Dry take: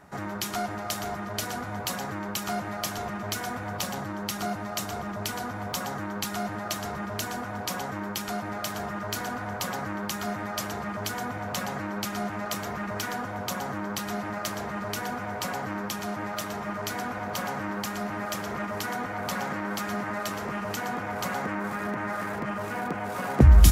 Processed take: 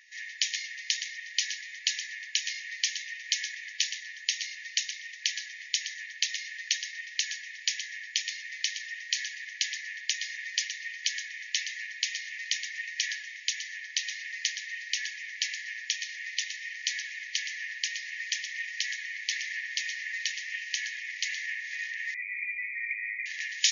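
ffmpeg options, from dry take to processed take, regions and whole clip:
-filter_complex "[0:a]asettb=1/sr,asplit=3[a][b][c];[a]atrim=end=22.144[d];[b]atrim=start=22.14:end=23.26,asetpts=PTS-STARTPTS,afade=t=in:d=0.004:c=qsin,afade=t=out:st=1.116:d=0.004:c=qsin,tiltshelf=f=1.3k:g=-9.5,lowpass=f=2.2k:t=q:w=0.5098,lowpass=f=2.2k:t=q:w=0.6013,lowpass=f=2.2k:t=q:w=0.9,lowpass=f=2.2k:t=q:w=2.563,afreqshift=-2600,asuperstop=centerf=1600:order=20:qfactor=3.2[e];[c]atrim=start=23.256[f];[d][e]acrossfade=d=0.004:c1=hsin:c2=qsin[g];[g][f]acrossfade=d=0.004:c1=qsin:c2=hsin,afftfilt=real='re*between(b*sr/4096,1700,6900)':imag='im*between(b*sr/4096,1700,6900)':win_size=4096:overlap=0.75,acontrast=74"

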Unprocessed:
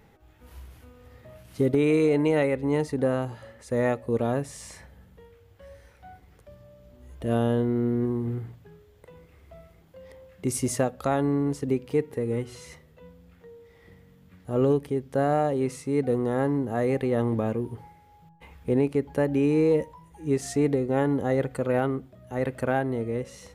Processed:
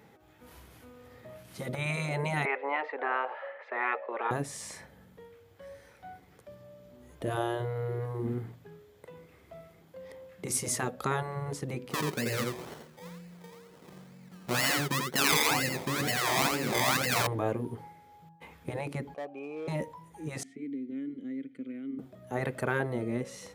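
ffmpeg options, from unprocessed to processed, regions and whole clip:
-filter_complex "[0:a]asettb=1/sr,asplit=3[a][b][c];[a]atrim=end=2.454[d];[b]atrim=start=2.45:end=4.31,asetpts=PTS-STARTPTS,afade=t=in:d=0.004:c=qsin,afade=t=out:st=1.856:d=0.004:c=qsin,acontrast=75,asuperpass=centerf=1200:order=8:qfactor=0.55[e];[c]atrim=start=4.306[f];[d][e]acrossfade=d=0.004:c1=hsin:c2=qsin[g];[g][f]acrossfade=d=0.004:c1=qsin:c2=hsin,asettb=1/sr,asplit=3[h][i][j];[h]atrim=end=11.914[k];[i]atrim=start=11.91:end=17.27,asetpts=PTS-STARTPTS,afade=t=in:d=0.004:c=qsin,afade=t=out:st=5.356:d=0.004:c=qsin,aecho=1:1:5.5:0.72,atrim=end_sample=236376,acrusher=samples=25:mix=1:aa=0.000001:lfo=1:lforange=15:lforate=2.1,aecho=1:1:86:0.596,atrim=end_sample=236376[l];[j]atrim=start=17.266[m];[k][l]acrossfade=d=0.004:c1=hsin:c2=qsin[n];[n][m]acrossfade=d=0.004:c1=qsin:c2=hsin,asettb=1/sr,asplit=3[o][p][q];[o]atrim=end=19.144[r];[p]atrim=start=19.14:end=19.68,asetpts=PTS-STARTPTS,afade=t=in:d=0.004:c=qsin,afade=t=out:st=0.536:d=0.004:c=qsin,asplit=3[s][t][u];[s]bandpass=f=730:t=q:w=8,volume=0dB[v];[t]bandpass=f=1.09k:t=q:w=8,volume=-6dB[w];[u]bandpass=f=2.44k:t=q:w=8,volume=-9dB[x];[v][w][x]amix=inputs=3:normalize=0,asoftclip=type=hard:threshold=-34.5dB[y];[q]atrim=start=19.676[z];[r][y]acrossfade=d=0.004:c1=hsin:c2=qsin[aa];[aa][z]acrossfade=d=0.004:c1=qsin:c2=hsin,asettb=1/sr,asplit=3[ab][ac][ad];[ab]atrim=end=20.434[ae];[ac]atrim=start=20.43:end=21.99,asetpts=PTS-STARTPTS,afade=t=in:d=0.004:c=qsin,afade=t=out:st=1.556:d=0.004:c=qsin,acrossover=split=2500|7100[af][ag][ah];[af]acompressor=threshold=-27dB:ratio=4[ai];[ag]acompressor=threshold=-56dB:ratio=4[aj];[ah]acompressor=threshold=-43dB:ratio=4[ak];[ai][aj][ak]amix=inputs=3:normalize=0,asplit=3[al][am][an];[al]bandpass=f=270:t=q:w=8,volume=0dB[ao];[am]bandpass=f=2.29k:t=q:w=8,volume=-6dB[ap];[an]bandpass=f=3.01k:t=q:w=8,volume=-9dB[aq];[ao][ap][aq]amix=inputs=3:normalize=0[ar];[ad]atrim=start=21.986[as];[ae][ar]acrossfade=d=0.004:c1=hsin:c2=qsin[at];[at][as]acrossfade=d=0.004:c1=qsin:c2=hsin,highpass=140,bandreject=f=2.8k:w=23,afftfilt=real='re*lt(hypot(re,im),0.251)':imag='im*lt(hypot(re,im),0.251)':win_size=1024:overlap=0.75,volume=1dB"

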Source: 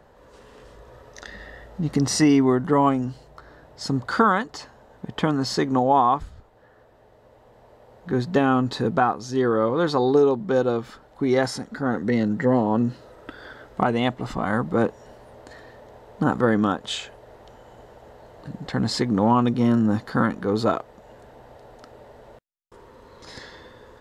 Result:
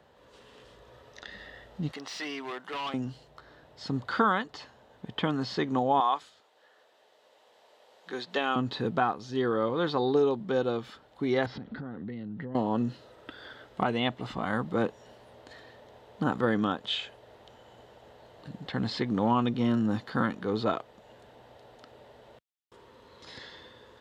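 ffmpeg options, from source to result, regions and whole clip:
-filter_complex "[0:a]asettb=1/sr,asplit=3[a][b][c];[a]atrim=end=1.914[d];[b]atrim=start=1.91:end=2.94,asetpts=PTS-STARTPTS,afade=t=in:d=0.004:c=qsin,afade=t=out:st=1.026:d=0.004:c=qsin,highpass=690,volume=26.5dB,asoftclip=hard,volume=-26.5dB[e];[c]atrim=start=2.936[f];[d][e]acrossfade=d=0.004:c1=hsin:c2=qsin[g];[g][f]acrossfade=d=0.004:c1=qsin:c2=hsin,asettb=1/sr,asplit=3[h][i][j];[h]atrim=end=6.004[k];[i]atrim=start=6:end=8.56,asetpts=PTS-STARTPTS,afade=t=in:d=0.004:c=qsin,afade=t=out:st=2.556:d=0.004:c=qsin,highpass=440,lowpass=7.1k,aemphasis=mode=production:type=75fm[l];[j]atrim=start=8.556[m];[k][l]acrossfade=d=0.004:c1=hsin:c2=qsin[n];[n][m]acrossfade=d=0.004:c1=qsin:c2=hsin,asettb=1/sr,asplit=3[o][p][q];[o]atrim=end=11.464[r];[p]atrim=start=11.46:end=12.55,asetpts=PTS-STARTPTS,afade=t=in:d=0.004:c=qsin,afade=t=out:st=1.086:d=0.004:c=qsin,lowpass=f=3.9k:w=0.5412,lowpass=f=3.9k:w=1.3066,lowshelf=f=300:g=12,acompressor=threshold=-28dB:ratio=8:attack=3.2:release=140:knee=1:detection=peak[s];[q]atrim=start=12.546[t];[r][s]acrossfade=d=0.004:c1=hsin:c2=qsin[u];[u][t]acrossfade=d=0.004:c1=qsin:c2=hsin,highpass=70,equalizer=f=3.3k:w=1.3:g=9,acrossover=split=4100[v][w];[w]acompressor=threshold=-47dB:ratio=4:attack=1:release=60[x];[v][x]amix=inputs=2:normalize=0,volume=-7dB"

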